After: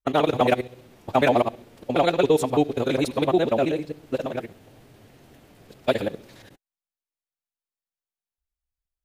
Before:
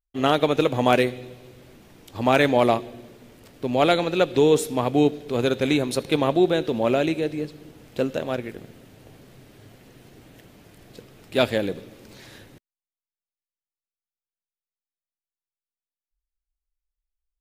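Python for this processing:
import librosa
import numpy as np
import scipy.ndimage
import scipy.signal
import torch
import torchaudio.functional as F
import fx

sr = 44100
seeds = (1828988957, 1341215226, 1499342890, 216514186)

y = fx.local_reverse(x, sr, ms=130.0)
y = fx.stretch_vocoder(y, sr, factor=0.52)
y = fx.peak_eq(y, sr, hz=770.0, db=3.5, octaves=1.3)
y = y * 10.0 ** (-1.0 / 20.0)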